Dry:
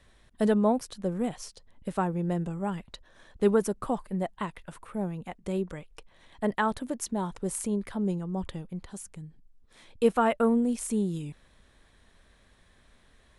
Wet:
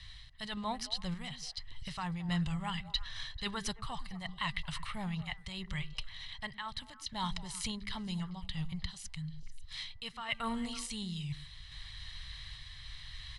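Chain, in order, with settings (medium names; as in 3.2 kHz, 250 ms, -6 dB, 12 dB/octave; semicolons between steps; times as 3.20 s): FFT filter 140 Hz 0 dB, 200 Hz -20 dB, 340 Hz -25 dB, 4.3 kHz +13 dB, 6.9 kHz +1 dB; reverse; compression 12:1, threshold -46 dBFS, peak gain reduction 21 dB; reverse; distance through air 61 m; comb 1 ms, depth 47%; de-hum 396 Hz, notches 5; on a send: repeats whose band climbs or falls 110 ms, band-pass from 220 Hz, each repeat 1.4 oct, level -8 dB; on the sum: random-step tremolo; trim +13.5 dB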